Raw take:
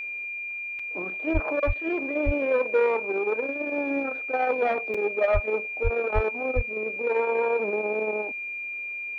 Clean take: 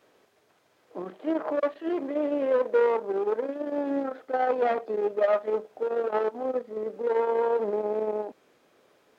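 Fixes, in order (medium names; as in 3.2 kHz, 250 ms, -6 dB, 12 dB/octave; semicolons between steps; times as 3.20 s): band-stop 2.4 kHz, Q 30; de-plosive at 1.33/1.66/2.25/5.33/5.83/6.14/6.55 s; interpolate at 0.79/4.94 s, 4.6 ms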